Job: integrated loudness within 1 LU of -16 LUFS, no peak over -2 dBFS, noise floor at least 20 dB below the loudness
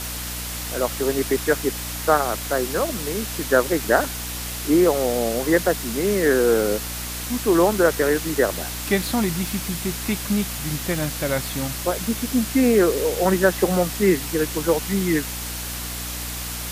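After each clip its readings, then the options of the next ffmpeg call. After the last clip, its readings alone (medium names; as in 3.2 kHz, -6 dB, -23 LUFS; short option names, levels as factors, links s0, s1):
hum 60 Hz; highest harmonic 300 Hz; hum level -32 dBFS; noise floor -30 dBFS; noise floor target -42 dBFS; loudness -22.0 LUFS; peak level -3.5 dBFS; loudness target -16.0 LUFS
-> -af "bandreject=f=60:t=h:w=6,bandreject=f=120:t=h:w=6,bandreject=f=180:t=h:w=6,bandreject=f=240:t=h:w=6,bandreject=f=300:t=h:w=6"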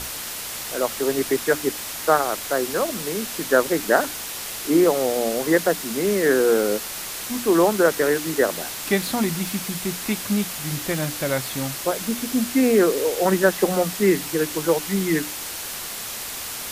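hum not found; noise floor -32 dBFS; noise floor target -42 dBFS
-> -af "afftdn=nr=10:nf=-32"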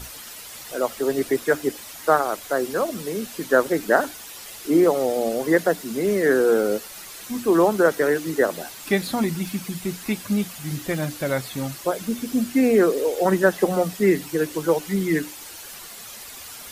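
noise floor -40 dBFS; noise floor target -43 dBFS
-> -af "afftdn=nr=6:nf=-40"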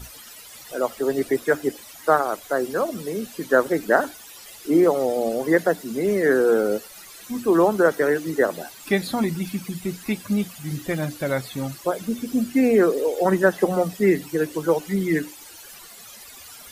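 noise floor -43 dBFS; loudness -22.5 LUFS; peak level -3.5 dBFS; loudness target -16.0 LUFS
-> -af "volume=2.11,alimiter=limit=0.794:level=0:latency=1"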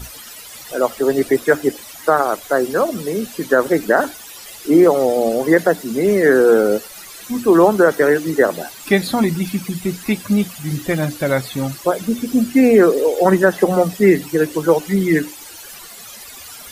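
loudness -16.5 LUFS; peak level -2.0 dBFS; noise floor -37 dBFS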